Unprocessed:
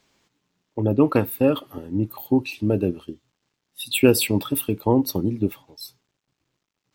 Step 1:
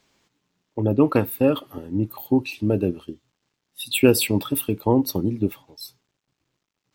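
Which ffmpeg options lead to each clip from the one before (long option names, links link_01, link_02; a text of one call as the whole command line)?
ffmpeg -i in.wav -af anull out.wav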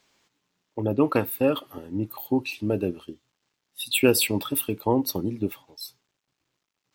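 ffmpeg -i in.wav -af "lowshelf=frequency=380:gain=-7" out.wav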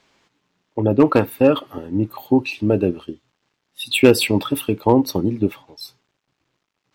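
ffmpeg -i in.wav -af "aemphasis=mode=reproduction:type=50kf,volume=10.5dB,asoftclip=hard,volume=-10.5dB,volume=8dB" out.wav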